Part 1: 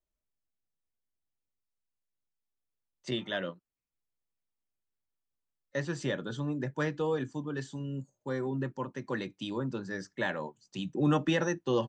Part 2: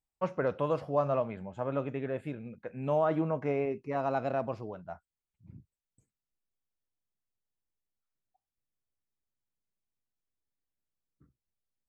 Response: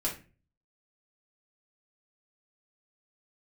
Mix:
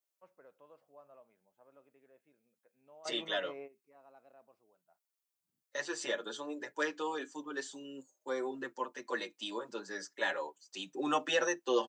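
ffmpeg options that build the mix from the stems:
-filter_complex "[0:a]highpass=340,highshelf=frequency=5400:gain=9,asplit=2[link_01][link_02];[link_02]adelay=6.6,afreqshift=-0.31[link_03];[link_01][link_03]amix=inputs=2:normalize=1,volume=2.5dB,asplit=2[link_04][link_05];[1:a]volume=-13.5dB[link_06];[link_05]apad=whole_len=523923[link_07];[link_06][link_07]sidechaingate=range=-15dB:threshold=-60dB:ratio=16:detection=peak[link_08];[link_04][link_08]amix=inputs=2:normalize=0,highpass=330"

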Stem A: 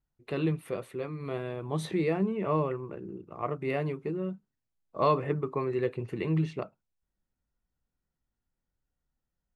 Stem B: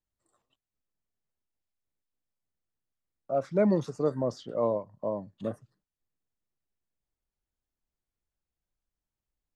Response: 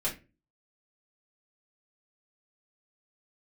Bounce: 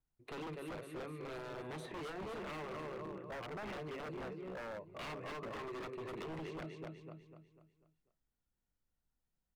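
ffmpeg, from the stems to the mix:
-filter_complex "[0:a]volume=-5.5dB,asplit=3[link_01][link_02][link_03];[link_02]volume=-21dB[link_04];[link_03]volume=-6dB[link_05];[1:a]lowpass=1200,volume=-8dB[link_06];[2:a]atrim=start_sample=2205[link_07];[link_04][link_07]afir=irnorm=-1:irlink=0[link_08];[link_05]aecho=0:1:247|494|741|988|1235|1482:1|0.42|0.176|0.0741|0.0311|0.0131[link_09];[link_01][link_06][link_08][link_09]amix=inputs=4:normalize=0,acrossover=split=280|2400[link_10][link_11][link_12];[link_10]acompressor=threshold=-51dB:ratio=4[link_13];[link_11]acompressor=threshold=-38dB:ratio=4[link_14];[link_12]acompressor=threshold=-59dB:ratio=4[link_15];[link_13][link_14][link_15]amix=inputs=3:normalize=0,aeval=exprs='0.0112*(abs(mod(val(0)/0.0112+3,4)-2)-1)':channel_layout=same"

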